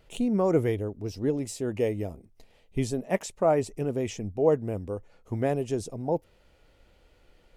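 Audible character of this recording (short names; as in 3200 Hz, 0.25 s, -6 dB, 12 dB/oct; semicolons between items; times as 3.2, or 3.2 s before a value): noise floor -62 dBFS; spectral tilt -6.5 dB/oct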